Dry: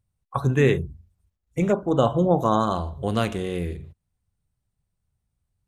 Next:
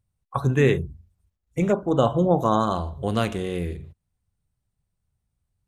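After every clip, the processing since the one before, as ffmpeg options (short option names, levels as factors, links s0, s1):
-af anull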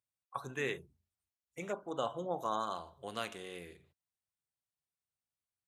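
-af "highpass=f=1100:p=1,volume=0.355"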